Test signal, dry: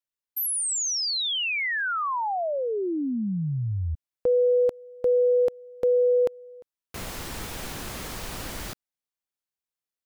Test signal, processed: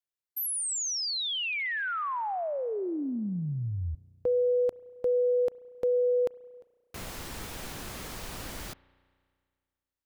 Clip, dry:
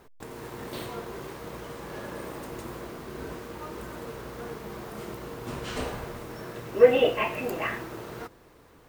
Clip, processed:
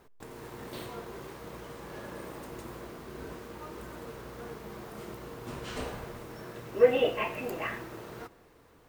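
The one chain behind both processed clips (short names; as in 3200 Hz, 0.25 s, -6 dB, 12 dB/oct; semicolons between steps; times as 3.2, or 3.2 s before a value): spring tank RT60 2 s, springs 33 ms, chirp 65 ms, DRR 20 dB; gain -4.5 dB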